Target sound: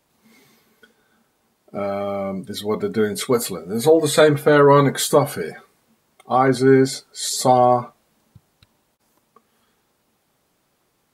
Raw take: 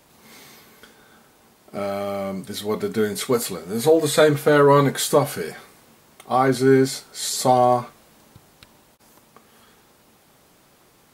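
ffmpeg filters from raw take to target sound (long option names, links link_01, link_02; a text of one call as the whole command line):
ffmpeg -i in.wav -af "afftdn=noise_reduction=13:noise_floor=-38,volume=2dB" out.wav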